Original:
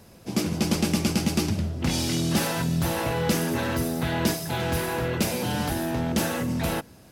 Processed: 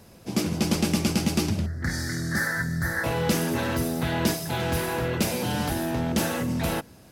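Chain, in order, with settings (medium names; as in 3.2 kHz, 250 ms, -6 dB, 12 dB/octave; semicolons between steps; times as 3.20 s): 1.66–3.04 s: FFT filter 100 Hz 0 dB, 210 Hz -6 dB, 480 Hz -8 dB, 990 Hz -10 dB, 1.8 kHz +14 dB, 2.7 kHz -30 dB, 4.3 kHz -5 dB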